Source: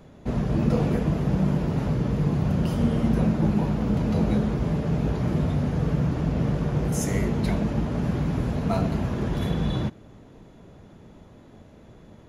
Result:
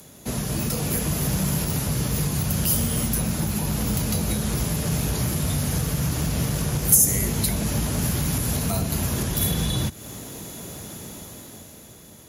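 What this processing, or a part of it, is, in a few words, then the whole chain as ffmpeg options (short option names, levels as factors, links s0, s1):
FM broadcast chain: -filter_complex "[0:a]highpass=60,dynaudnorm=f=220:g=11:m=3.76,acrossover=split=110|850[s0][s1][s2];[s0]acompressor=threshold=0.0794:ratio=4[s3];[s1]acompressor=threshold=0.0447:ratio=4[s4];[s2]acompressor=threshold=0.0112:ratio=4[s5];[s3][s4][s5]amix=inputs=3:normalize=0,aemphasis=mode=production:type=75fm,alimiter=limit=0.168:level=0:latency=1:release=262,asoftclip=type=hard:threshold=0.126,lowpass=f=15000:w=0.5412,lowpass=f=15000:w=1.3066,aemphasis=mode=production:type=75fm,volume=1.12"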